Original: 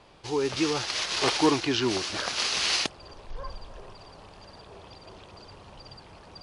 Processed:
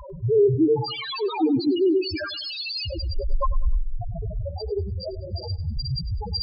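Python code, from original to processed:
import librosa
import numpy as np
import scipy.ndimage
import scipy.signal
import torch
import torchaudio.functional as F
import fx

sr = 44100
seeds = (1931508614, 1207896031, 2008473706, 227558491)

y = fx.peak_eq(x, sr, hz=7000.0, db=-13.5, octaves=0.69, at=(0.88, 1.49), fade=0.02)
y = fx.fuzz(y, sr, gain_db=50.0, gate_db=-57.0)
y = fx.spec_topn(y, sr, count=1)
y = fx.echo_feedback(y, sr, ms=99, feedback_pct=33, wet_db=-16.5)
y = fx.ensemble(y, sr, at=(4.49, 5.77))
y = F.gain(torch.from_numpy(y), 3.5).numpy()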